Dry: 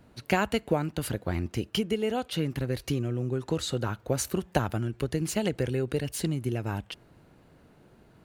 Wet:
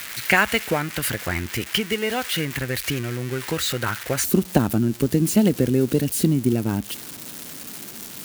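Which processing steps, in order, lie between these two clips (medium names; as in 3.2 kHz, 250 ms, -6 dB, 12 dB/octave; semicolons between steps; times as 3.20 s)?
zero-crossing glitches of -24 dBFS; peaking EQ 1.9 kHz +13.5 dB 1.4 oct, from 4.24 s 240 Hz; trim +1.5 dB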